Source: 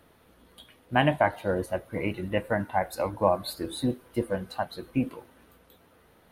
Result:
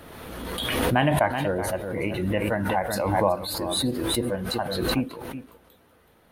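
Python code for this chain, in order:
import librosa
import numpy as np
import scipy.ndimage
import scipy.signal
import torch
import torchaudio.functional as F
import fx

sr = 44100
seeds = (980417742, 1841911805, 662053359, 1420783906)

p1 = x + fx.echo_single(x, sr, ms=376, db=-12.0, dry=0)
y = fx.pre_swell(p1, sr, db_per_s=28.0)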